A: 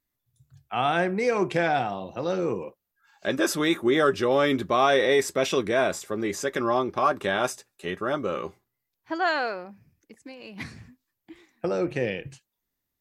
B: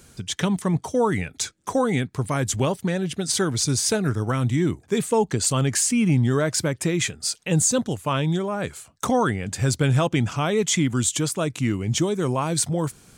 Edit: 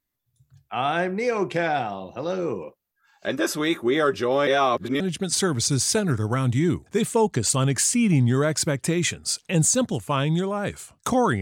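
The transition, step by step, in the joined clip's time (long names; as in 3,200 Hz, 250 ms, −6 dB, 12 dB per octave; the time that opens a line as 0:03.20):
A
0:04.47–0:05.00: reverse
0:05.00: continue with B from 0:02.97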